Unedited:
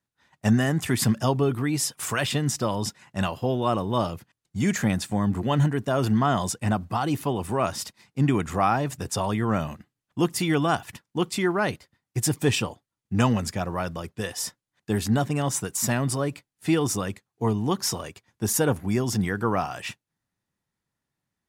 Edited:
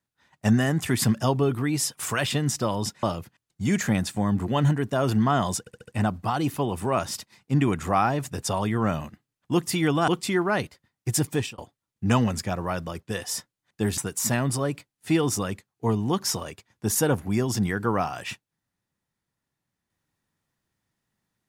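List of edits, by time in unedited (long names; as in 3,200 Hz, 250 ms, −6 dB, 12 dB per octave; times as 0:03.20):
0:03.03–0:03.98: remove
0:06.55: stutter 0.07 s, 5 plays
0:10.75–0:11.17: remove
0:12.36–0:12.67: fade out linear
0:15.07–0:15.56: remove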